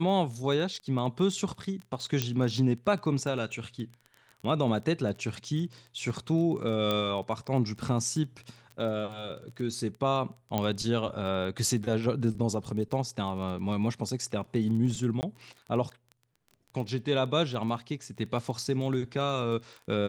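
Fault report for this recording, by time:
crackle 18/s -36 dBFS
2.22 pop -12 dBFS
6.91 pop -15 dBFS
10.58 pop -14 dBFS
15.21–15.23 gap 19 ms

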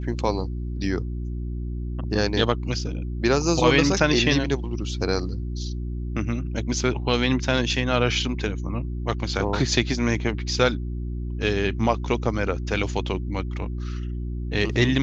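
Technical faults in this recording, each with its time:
hum 60 Hz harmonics 6 -29 dBFS

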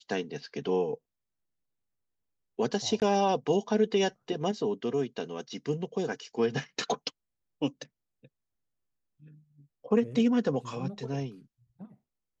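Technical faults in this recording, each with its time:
3–3.02 gap 18 ms

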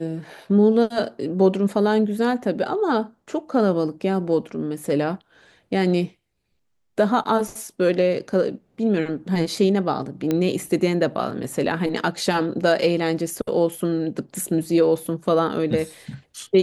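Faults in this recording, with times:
10.31 pop -10 dBFS

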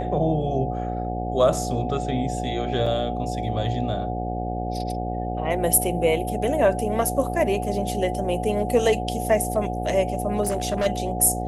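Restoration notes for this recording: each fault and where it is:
buzz 60 Hz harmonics 14 -29 dBFS
tone 730 Hz -30 dBFS
2.86 gap 4.8 ms
10.42–10.87 clipped -19 dBFS

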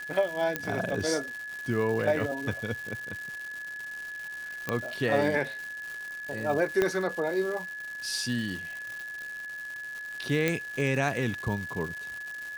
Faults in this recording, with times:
crackle 320/s -35 dBFS
tone 1700 Hz -36 dBFS
0.56 pop -12 dBFS
4.69 pop -14 dBFS
6.82 pop -12 dBFS
10.48 pop

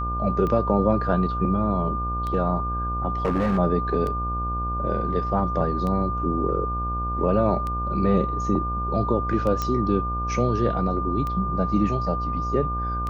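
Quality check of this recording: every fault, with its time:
buzz 60 Hz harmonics 25 -29 dBFS
tick 33 1/3 rpm -18 dBFS
tone 1200 Hz -27 dBFS
3.25–3.59 clipped -18 dBFS
9.62 pop -12 dBFS

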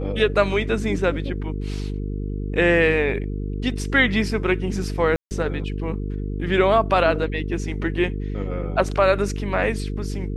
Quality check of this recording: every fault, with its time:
buzz 50 Hz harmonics 9 -27 dBFS
5.16–5.31 gap 0.149 s

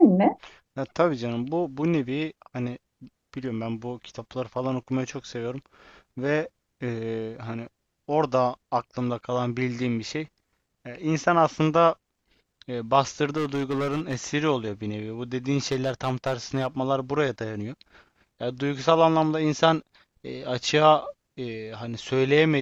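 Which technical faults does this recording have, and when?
13.36–14.15 clipped -23 dBFS
15.71–16.67 clipped -19.5 dBFS

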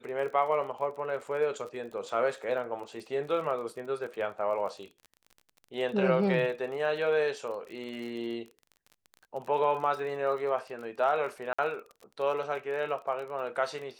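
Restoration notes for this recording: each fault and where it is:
crackle 33/s -39 dBFS
11.53–11.59 gap 55 ms

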